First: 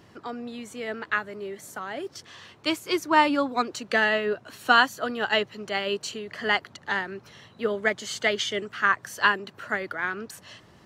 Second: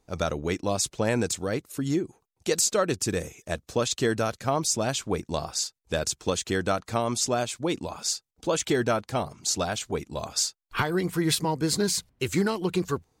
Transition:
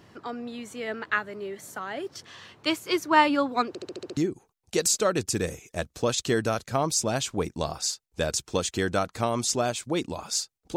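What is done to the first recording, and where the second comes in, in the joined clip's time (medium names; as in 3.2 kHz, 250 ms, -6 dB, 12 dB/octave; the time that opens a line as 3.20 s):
first
3.68 s: stutter in place 0.07 s, 7 plays
4.17 s: go over to second from 1.90 s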